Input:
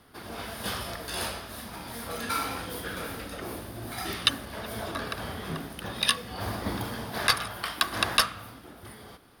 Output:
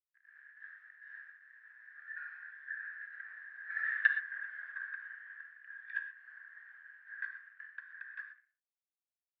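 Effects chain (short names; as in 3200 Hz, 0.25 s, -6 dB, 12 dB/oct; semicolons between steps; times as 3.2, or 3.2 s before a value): Doppler pass-by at 3.94, 20 m/s, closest 8 m; bit-crush 9-bit; Butterworth band-pass 1700 Hz, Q 7.3; non-linear reverb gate 0.15 s flat, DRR 7 dB; gain +11 dB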